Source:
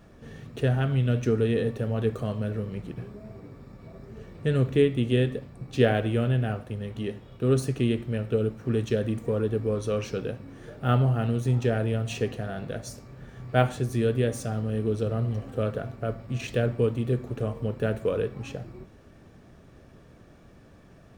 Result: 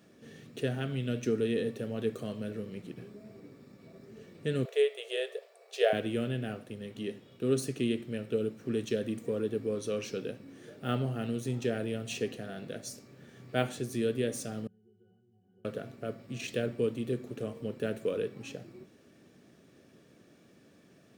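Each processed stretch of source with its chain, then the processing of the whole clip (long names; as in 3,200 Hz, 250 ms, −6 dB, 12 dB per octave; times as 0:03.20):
0:04.65–0:05.93: linear-phase brick-wall high-pass 390 Hz + parametric band 660 Hz +12.5 dB 0.27 octaves
0:14.67–0:15.65: downward compressor 4 to 1, threshold −35 dBFS + high-frequency loss of the air 220 metres + resonances in every octave F#, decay 0.41 s
whole clip: high-pass filter 240 Hz 12 dB per octave; parametric band 940 Hz −11 dB 1.8 octaves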